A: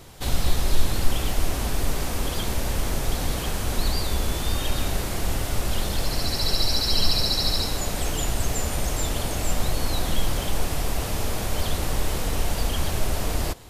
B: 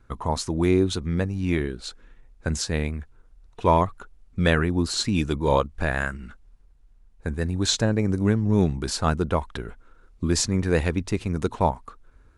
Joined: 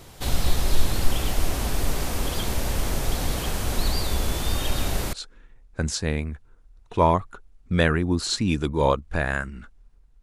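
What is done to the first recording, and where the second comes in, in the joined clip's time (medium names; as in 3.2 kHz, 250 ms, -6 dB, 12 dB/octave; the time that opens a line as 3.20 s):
A
5.13 s: go over to B from 1.80 s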